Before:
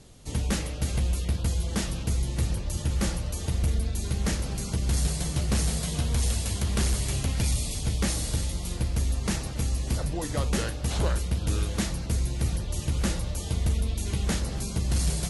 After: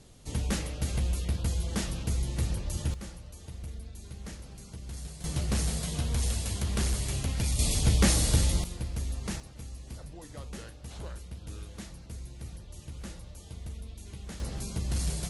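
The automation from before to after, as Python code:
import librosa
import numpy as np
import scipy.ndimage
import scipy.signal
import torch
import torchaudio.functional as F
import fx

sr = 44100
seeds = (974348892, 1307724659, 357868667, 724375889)

y = fx.gain(x, sr, db=fx.steps((0.0, -3.0), (2.94, -15.0), (5.24, -3.5), (7.59, 4.0), (8.64, -7.0), (9.4, -15.0), (14.4, -5.0)))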